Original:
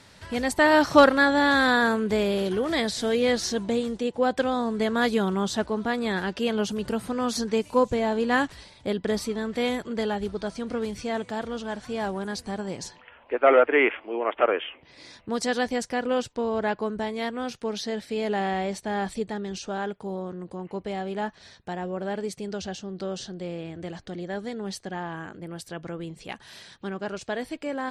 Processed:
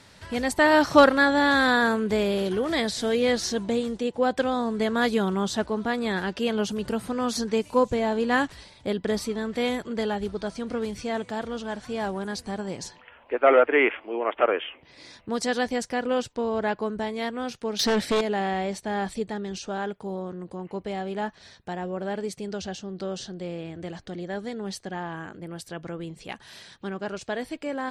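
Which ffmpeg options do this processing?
ffmpeg -i in.wav -filter_complex "[0:a]asettb=1/sr,asplit=3[link_01][link_02][link_03];[link_01]atrim=end=17.794[link_04];[link_02]atrim=start=17.79:end=18.21,asetpts=PTS-STARTPTS,afade=type=in:duration=0.004:curve=qsin,afade=type=out:start_time=0.416:duration=0.004:curve=qsin,aeval=exprs='0.119*sin(PI/2*2.51*val(0)/0.119)':channel_layout=same[link_05];[link_03]atrim=start=18.206[link_06];[link_04][link_05]acrossfade=duration=0.004:curve1=hsin:curve2=qsin[link_07];[link_07][link_06]acrossfade=duration=0.004:curve1=qsin:curve2=hsin" out.wav

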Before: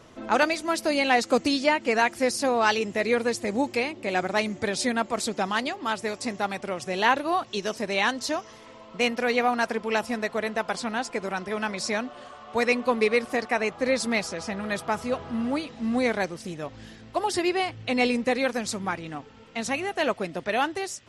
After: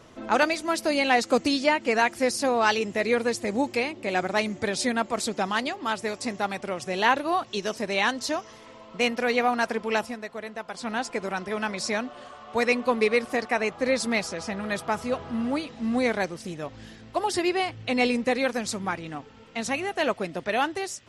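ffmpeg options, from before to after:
ffmpeg -i in.wav -filter_complex "[0:a]asplit=3[link_01][link_02][link_03];[link_01]atrim=end=10.16,asetpts=PTS-STARTPTS,afade=type=out:start_time=10:duration=0.16:silence=0.398107[link_04];[link_02]atrim=start=10.16:end=10.75,asetpts=PTS-STARTPTS,volume=-8dB[link_05];[link_03]atrim=start=10.75,asetpts=PTS-STARTPTS,afade=type=in:duration=0.16:silence=0.398107[link_06];[link_04][link_05][link_06]concat=n=3:v=0:a=1" out.wav

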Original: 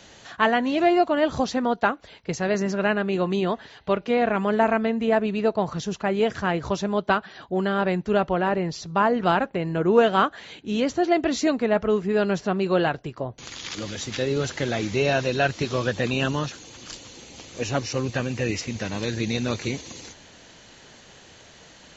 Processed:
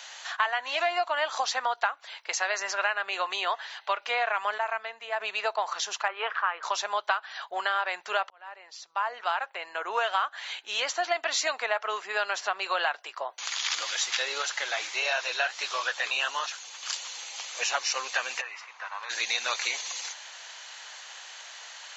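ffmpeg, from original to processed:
ffmpeg -i in.wav -filter_complex "[0:a]asettb=1/sr,asplit=3[link_01][link_02][link_03];[link_01]atrim=end=6.084[link_04];[link_02]atrim=start=6.08:end=6.63,asetpts=PTS-STARTPTS,afade=type=in:duration=0.004:curve=qsin,afade=type=out:start_time=0.546:duration=0.004:curve=qsin,highpass=frequency=260:width=0.5412,highpass=frequency=260:width=1.3066,equalizer=frequency=320:width_type=q:width=4:gain=-4,equalizer=frequency=680:width_type=q:width=4:gain=-7,equalizer=frequency=1200:width_type=q:width=4:gain=7,equalizer=frequency=2100:width_type=q:width=4:gain=-5,lowpass=frequency=2700:width=0.5412,lowpass=frequency=2700:width=1.3066[link_05];[link_03]atrim=start=6.626[link_06];[link_04][link_05]acrossfade=duration=0.004:curve1=hsin:curve2=qsin[link_07];[link_07][link_06]acrossfade=duration=0.004:curve1=qsin:curve2=hsin,asettb=1/sr,asplit=3[link_08][link_09][link_10];[link_08]atrim=end=14.424[link_11];[link_09]atrim=start=14.42:end=16.83,asetpts=PTS-STARTPTS,afade=type=in:duration=0.004:curve=qsin,afade=type=out:start_time=2.406:duration=0.004:curve=qsin,flanger=delay=1.6:depth=8.9:regen=-64:speed=1.5:shape=triangular[link_12];[link_10]atrim=start=16.826[link_13];[link_11][link_12]acrossfade=duration=0.004:curve1=hsin:curve2=qsin[link_14];[link_14][link_13]acrossfade=duration=0.004:curve1=qsin:curve2=hsin,asplit=3[link_15][link_16][link_17];[link_15]afade=type=out:start_time=18.4:duration=0.02[link_18];[link_16]bandpass=frequency=1100:width_type=q:width=2.8,afade=type=in:start_time=18.4:duration=0.02,afade=type=out:start_time=19.09:duration=0.02[link_19];[link_17]afade=type=in:start_time=19.09:duration=0.02[link_20];[link_18][link_19][link_20]amix=inputs=3:normalize=0,asplit=4[link_21][link_22][link_23][link_24];[link_21]atrim=end=4.582[link_25];[link_22]atrim=start=4.578:end=5.202,asetpts=PTS-STARTPTS,volume=-9dB[link_26];[link_23]atrim=start=5.198:end=8.3,asetpts=PTS-STARTPTS,afade=type=out:start_time=3.098:duration=0.004:curve=hsin[link_27];[link_24]atrim=start=8.3,asetpts=PTS-STARTPTS,afade=type=in:duration=2.29[link_28];[link_25][link_26]acrossfade=duration=0.004:curve1=hsin:curve2=hsin[link_29];[link_27][link_28]concat=n=2:v=0:a=1[link_30];[link_29][link_30]acrossfade=duration=0.004:curve1=hsin:curve2=hsin,highpass=frequency=820:width=0.5412,highpass=frequency=820:width=1.3066,acompressor=threshold=-30dB:ratio=6,volume=6.5dB" out.wav

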